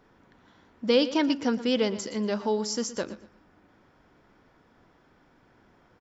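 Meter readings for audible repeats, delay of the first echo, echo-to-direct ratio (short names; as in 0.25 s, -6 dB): 2, 0.118 s, -14.5 dB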